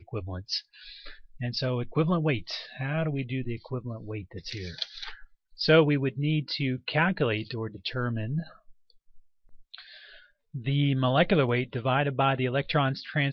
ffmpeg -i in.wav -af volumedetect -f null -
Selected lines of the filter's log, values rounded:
mean_volume: -28.8 dB
max_volume: -9.0 dB